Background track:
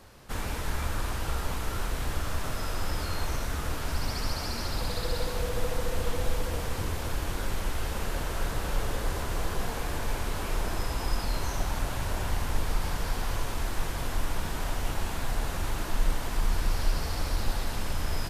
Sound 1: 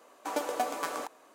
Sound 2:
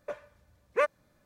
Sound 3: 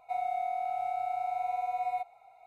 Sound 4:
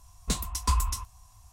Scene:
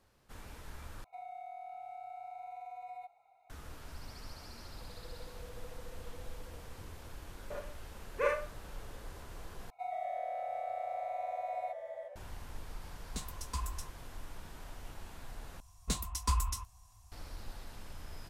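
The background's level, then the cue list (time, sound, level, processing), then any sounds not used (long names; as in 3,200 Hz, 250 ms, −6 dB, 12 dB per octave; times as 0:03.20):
background track −17 dB
0:01.04: overwrite with 3 −9.5 dB + downward compressor 3 to 1, threshold −35 dBFS
0:07.42: mix in 2 −9 dB + four-comb reverb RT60 0.36 s, combs from 31 ms, DRR −4 dB
0:09.70: overwrite with 3 −7 dB + delay with pitch and tempo change per echo 107 ms, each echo −2 semitones, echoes 3, each echo −6 dB
0:12.86: mix in 4 −12.5 dB
0:15.60: overwrite with 4 −5.5 dB
not used: 1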